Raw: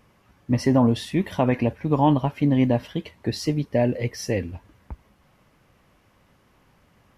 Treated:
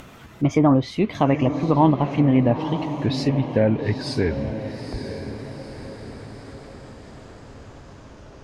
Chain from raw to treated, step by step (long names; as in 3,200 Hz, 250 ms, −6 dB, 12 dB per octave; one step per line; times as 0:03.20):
gliding playback speed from 120% → 50%
upward compression, threshold −34 dBFS
on a send: feedback delay with all-pass diffusion 920 ms, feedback 51%, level −9.5 dB
on the sum: treble cut that deepens with the level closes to 2,400 Hz, closed at −15 dBFS
level +2 dB